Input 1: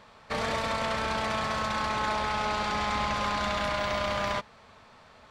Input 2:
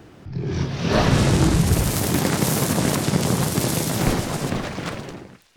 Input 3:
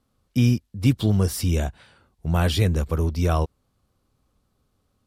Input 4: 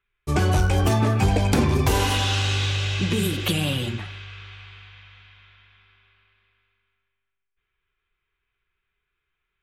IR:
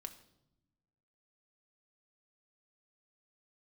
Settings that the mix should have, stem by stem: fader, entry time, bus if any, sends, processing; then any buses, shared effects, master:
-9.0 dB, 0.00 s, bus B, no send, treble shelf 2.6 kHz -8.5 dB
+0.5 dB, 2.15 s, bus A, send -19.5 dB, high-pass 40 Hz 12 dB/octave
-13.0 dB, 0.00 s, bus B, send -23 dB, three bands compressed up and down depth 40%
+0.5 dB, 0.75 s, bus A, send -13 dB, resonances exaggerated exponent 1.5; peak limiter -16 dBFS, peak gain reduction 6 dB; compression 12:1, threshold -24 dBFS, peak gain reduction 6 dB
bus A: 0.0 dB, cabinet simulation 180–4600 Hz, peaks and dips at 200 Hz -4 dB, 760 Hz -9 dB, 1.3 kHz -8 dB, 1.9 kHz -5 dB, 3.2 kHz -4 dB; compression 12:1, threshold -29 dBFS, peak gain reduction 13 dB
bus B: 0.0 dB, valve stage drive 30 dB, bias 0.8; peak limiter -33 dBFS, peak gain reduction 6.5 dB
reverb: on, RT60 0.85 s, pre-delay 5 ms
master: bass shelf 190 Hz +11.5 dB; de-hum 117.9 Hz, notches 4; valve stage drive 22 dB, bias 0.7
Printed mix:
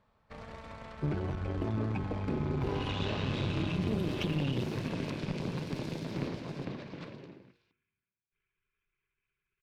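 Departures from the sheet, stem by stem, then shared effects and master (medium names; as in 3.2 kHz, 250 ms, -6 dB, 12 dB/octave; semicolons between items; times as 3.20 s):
stem 2 +0.5 dB -> -11.0 dB; stem 3: muted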